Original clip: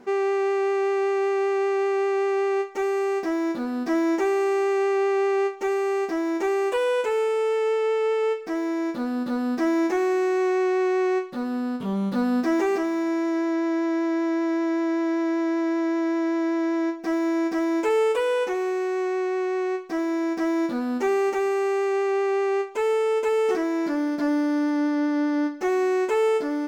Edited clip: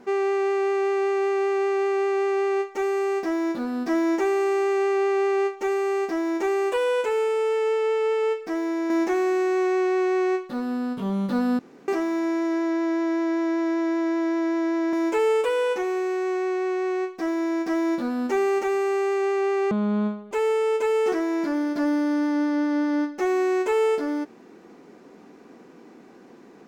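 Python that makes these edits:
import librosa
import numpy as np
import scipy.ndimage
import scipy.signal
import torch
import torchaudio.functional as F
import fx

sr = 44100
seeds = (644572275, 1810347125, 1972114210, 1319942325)

y = fx.edit(x, sr, fx.cut(start_s=8.9, length_s=0.83),
    fx.room_tone_fill(start_s=12.42, length_s=0.29),
    fx.cut(start_s=15.76, length_s=1.88),
    fx.speed_span(start_s=22.42, length_s=0.32, speed=0.53), tone=tone)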